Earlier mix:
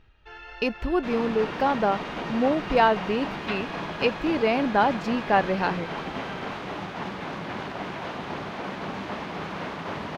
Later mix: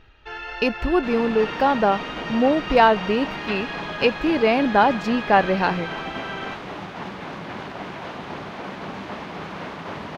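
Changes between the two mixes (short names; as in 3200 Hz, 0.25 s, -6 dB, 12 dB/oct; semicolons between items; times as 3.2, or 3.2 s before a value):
speech +4.5 dB; first sound +9.5 dB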